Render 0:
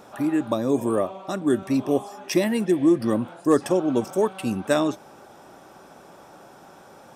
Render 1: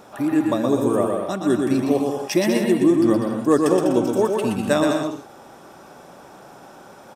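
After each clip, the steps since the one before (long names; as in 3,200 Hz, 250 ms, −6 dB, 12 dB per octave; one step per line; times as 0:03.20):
bouncing-ball delay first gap 120 ms, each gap 0.65×, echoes 5
level +1.5 dB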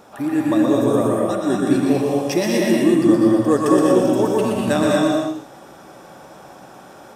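reverb whose tail is shaped and stops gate 260 ms rising, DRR −0.5 dB
level −1 dB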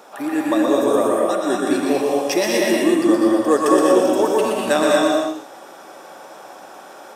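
high-pass filter 390 Hz 12 dB per octave
level +3.5 dB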